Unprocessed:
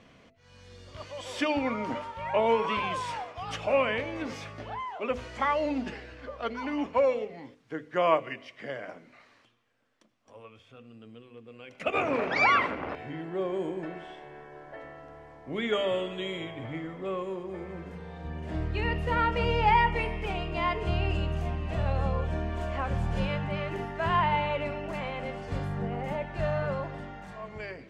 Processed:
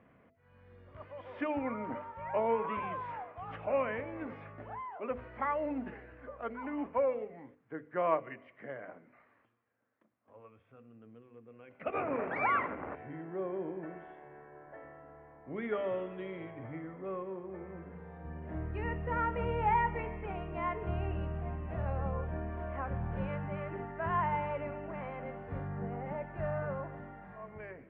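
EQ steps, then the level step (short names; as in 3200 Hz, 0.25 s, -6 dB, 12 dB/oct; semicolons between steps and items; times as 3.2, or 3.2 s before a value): HPF 50 Hz; LPF 2000 Hz 24 dB/oct; -6.0 dB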